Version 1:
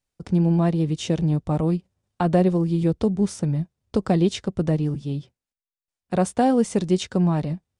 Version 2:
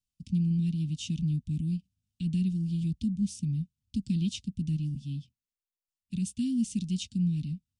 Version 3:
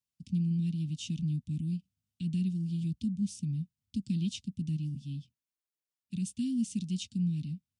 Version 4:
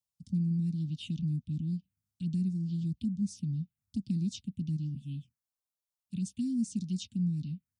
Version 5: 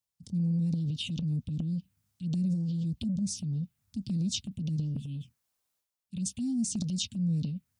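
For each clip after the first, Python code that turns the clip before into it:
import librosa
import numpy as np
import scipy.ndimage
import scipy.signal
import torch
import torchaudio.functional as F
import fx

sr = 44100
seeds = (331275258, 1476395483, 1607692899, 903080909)

y1 = scipy.signal.sosfilt(scipy.signal.cheby1(4, 1.0, [250.0, 2700.0], 'bandstop', fs=sr, output='sos'), x)
y1 = F.gain(torch.from_numpy(y1), -6.0).numpy()
y2 = scipy.signal.sosfilt(scipy.signal.butter(2, 91.0, 'highpass', fs=sr, output='sos'), y1)
y2 = F.gain(torch.from_numpy(y2), -2.5).numpy()
y3 = fx.env_phaser(y2, sr, low_hz=330.0, high_hz=3100.0, full_db=-28.5)
y4 = fx.transient(y3, sr, attack_db=-4, sustain_db=10)
y4 = F.gain(torch.from_numpy(y4), 1.5).numpy()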